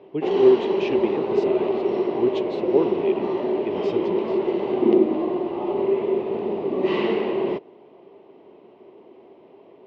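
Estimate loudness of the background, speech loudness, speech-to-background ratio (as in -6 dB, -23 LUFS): -23.5 LUFS, -25.0 LUFS, -1.5 dB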